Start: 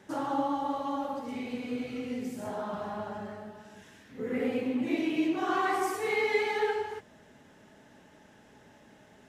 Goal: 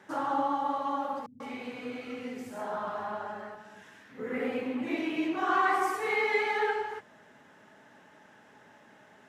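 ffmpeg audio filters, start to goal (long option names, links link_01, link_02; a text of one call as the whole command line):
ffmpeg -i in.wav -filter_complex "[0:a]highpass=110,equalizer=frequency=1300:width=0.68:gain=9,asettb=1/sr,asplit=3[link_01][link_02][link_03];[link_01]atrim=end=1.264[link_04];[link_02]atrim=start=1.26:end=3.55,asetpts=PTS-STARTPTS,afade=type=in:duration=0.004:curve=qsin,afade=type=out:start_time=2.286:duration=0.004:curve=qsin,acrossover=split=180[link_05][link_06];[link_06]adelay=140[link_07];[link_05][link_07]amix=inputs=2:normalize=0,atrim=end_sample=100989[link_08];[link_03]atrim=start=3.546[link_09];[link_04][link_08]acrossfade=duration=0.004:curve1=hsin:curve2=qsin[link_10];[link_10][link_09]acrossfade=duration=0.004:curve1=qsin:curve2=hsin,volume=-4dB" out.wav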